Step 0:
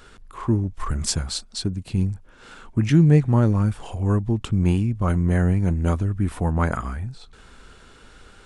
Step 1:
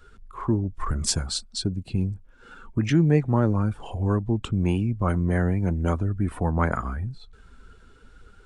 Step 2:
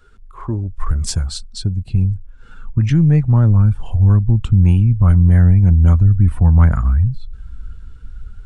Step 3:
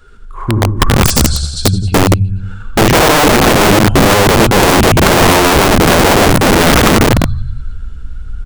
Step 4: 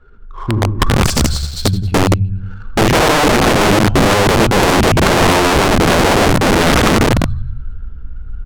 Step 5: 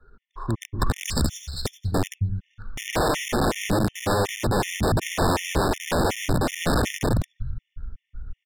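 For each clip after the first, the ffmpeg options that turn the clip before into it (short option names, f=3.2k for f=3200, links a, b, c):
-filter_complex "[0:a]afftdn=nr=12:nf=-43,acrossover=split=250[a][b];[a]alimiter=limit=-18dB:level=0:latency=1:release=404[c];[c][b]amix=inputs=2:normalize=0"
-af "aeval=exprs='0.398*(cos(1*acos(clip(val(0)/0.398,-1,1)))-cos(1*PI/2))+0.00794*(cos(4*acos(clip(val(0)/0.398,-1,1)))-cos(4*PI/2))':c=same,asubboost=boost=11:cutoff=120"
-filter_complex "[0:a]asplit=2[a][b];[b]aecho=0:1:80|168|264.8|371.3|488.4:0.631|0.398|0.251|0.158|0.1[c];[a][c]amix=inputs=2:normalize=0,aeval=exprs='(mod(3.35*val(0)+1,2)-1)/3.35':c=same,volume=7.5dB"
-af "adynamicsmooth=sensitivity=5:basefreq=1.4k,volume=-3dB"
-filter_complex "[0:a]acrossover=split=110|6000[a][b][c];[b]asoftclip=type=tanh:threshold=-7dB[d];[a][d][c]amix=inputs=3:normalize=0,afftfilt=real='re*gt(sin(2*PI*2.7*pts/sr)*(1-2*mod(floor(b*sr/1024/1800),2)),0)':imag='im*gt(sin(2*PI*2.7*pts/sr)*(1-2*mod(floor(b*sr/1024/1800),2)),0)':win_size=1024:overlap=0.75,volume=-7.5dB"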